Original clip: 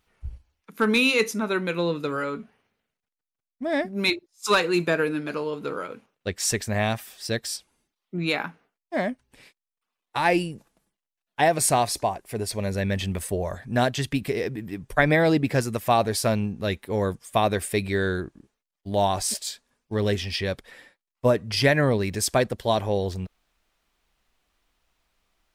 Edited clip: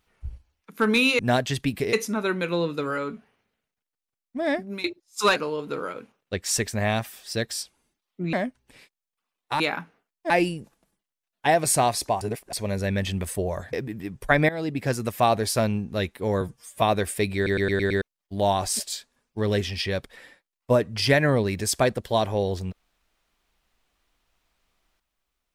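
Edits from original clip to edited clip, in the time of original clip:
0:03.85–0:04.10: fade out, to −19.5 dB
0:04.62–0:05.30: remove
0:08.27–0:08.97: move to 0:10.24
0:12.15–0:12.47: reverse
0:13.67–0:14.41: move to 0:01.19
0:15.17–0:15.73: fade in, from −16.5 dB
0:17.09–0:17.36: time-stretch 1.5×
0:17.90: stutter in place 0.11 s, 6 plays

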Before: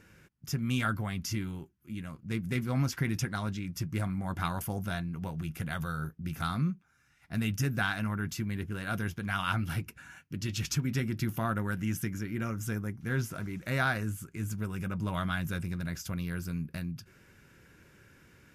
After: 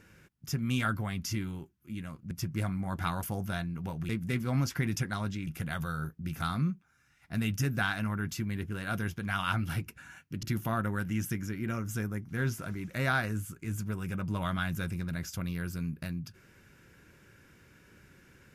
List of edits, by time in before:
0:02.31–0:03.69: move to 0:05.47
0:10.43–0:11.15: remove

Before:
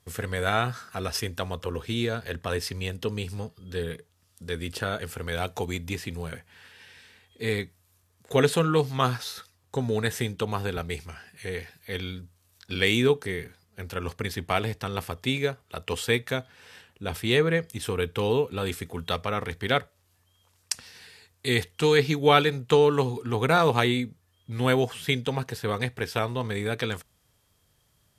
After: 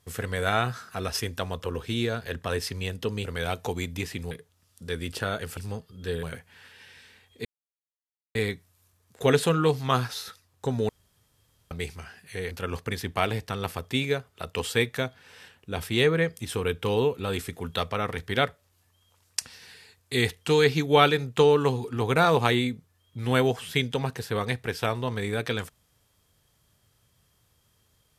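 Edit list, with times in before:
0:03.25–0:03.91: swap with 0:05.17–0:06.23
0:07.45: splice in silence 0.90 s
0:09.99–0:10.81: fill with room tone
0:11.61–0:13.84: remove

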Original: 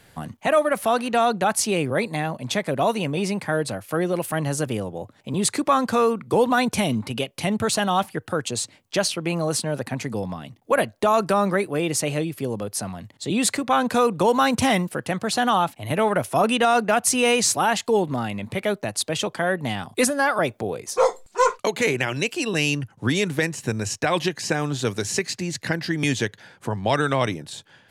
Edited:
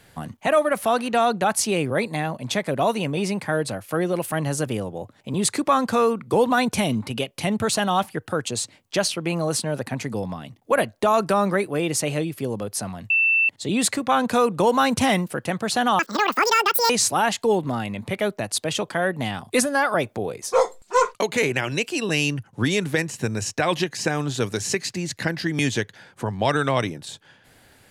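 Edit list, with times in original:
0:13.10: insert tone 2,670 Hz −15.5 dBFS 0.39 s
0:15.60–0:17.34: play speed 192%

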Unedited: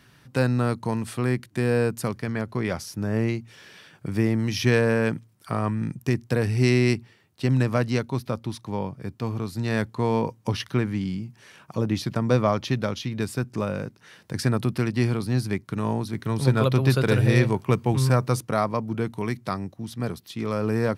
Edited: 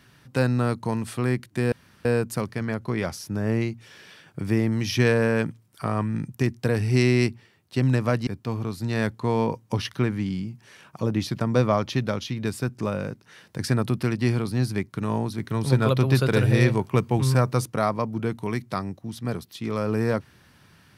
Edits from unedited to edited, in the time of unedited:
0:01.72: splice in room tone 0.33 s
0:07.94–0:09.02: remove

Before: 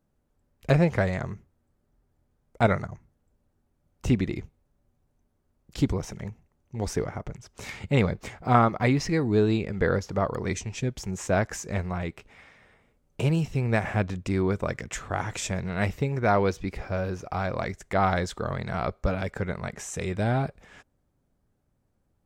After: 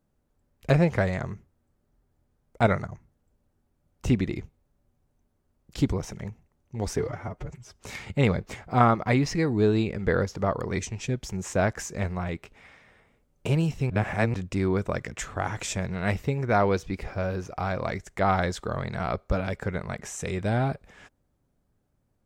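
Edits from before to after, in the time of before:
0:06.98–0:07.50: time-stretch 1.5×
0:13.64–0:14.08: reverse

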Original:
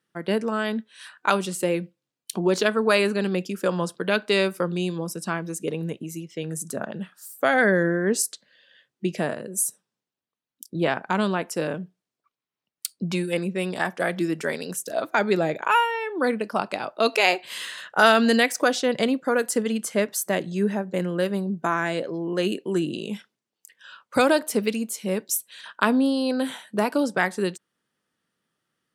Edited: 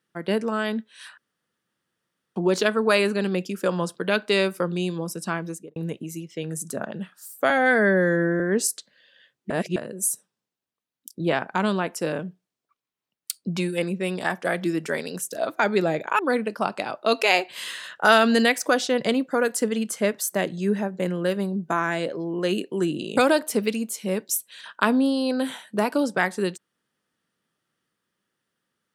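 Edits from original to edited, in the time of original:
0:01.18–0:02.36: fill with room tone
0:05.46–0:05.76: fade out and dull
0:07.50–0:07.95: time-stretch 2×
0:09.05–0:09.31: reverse
0:15.74–0:16.13: remove
0:23.11–0:24.17: remove

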